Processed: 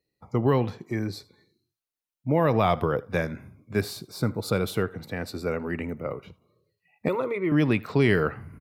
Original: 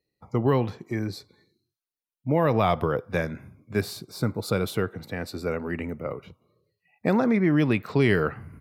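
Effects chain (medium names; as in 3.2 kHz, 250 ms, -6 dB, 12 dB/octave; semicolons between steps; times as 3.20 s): 7.08–7.52 s: static phaser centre 1.1 kHz, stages 8; delay 78 ms -23 dB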